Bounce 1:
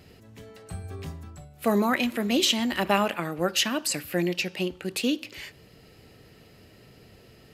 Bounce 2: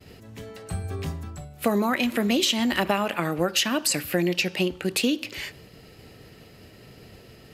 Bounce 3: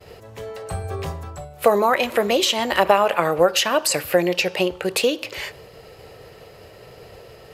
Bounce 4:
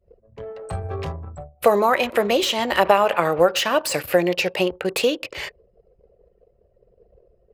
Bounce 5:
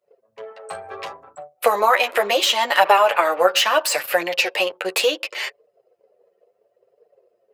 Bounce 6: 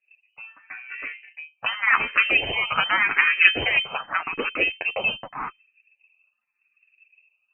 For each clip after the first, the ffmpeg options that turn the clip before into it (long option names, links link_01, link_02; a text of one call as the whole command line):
ffmpeg -i in.wav -af "agate=range=-33dB:threshold=-50dB:ratio=3:detection=peak,acompressor=threshold=-25dB:ratio=6,volume=6dB" out.wav
ffmpeg -i in.wav -af "equalizer=frequency=250:width_type=o:width=1:gain=-11,equalizer=frequency=500:width_type=o:width=1:gain=10,equalizer=frequency=1000:width_type=o:width=1:gain=6,volume=2.5dB" out.wav
ffmpeg -i in.wav -filter_complex "[0:a]anlmdn=15.8,acrossover=split=3000[link_01][link_02];[link_02]asoftclip=type=tanh:threshold=-23dB[link_03];[link_01][link_03]amix=inputs=2:normalize=0" out.wav
ffmpeg -i in.wav -af "flanger=delay=6.4:depth=4.8:regen=7:speed=0.71:shape=triangular,highpass=650,volume=7.5dB" out.wav
ffmpeg -i in.wav -filter_complex "[0:a]aeval=exprs='0.891*(cos(1*acos(clip(val(0)/0.891,-1,1)))-cos(1*PI/2))+0.141*(cos(4*acos(clip(val(0)/0.891,-1,1)))-cos(4*PI/2))':channel_layout=same,lowpass=frequency=2600:width_type=q:width=0.5098,lowpass=frequency=2600:width_type=q:width=0.6013,lowpass=frequency=2600:width_type=q:width=0.9,lowpass=frequency=2600:width_type=q:width=2.563,afreqshift=-3100,asplit=2[link_01][link_02];[link_02]afreqshift=0.86[link_03];[link_01][link_03]amix=inputs=2:normalize=1" out.wav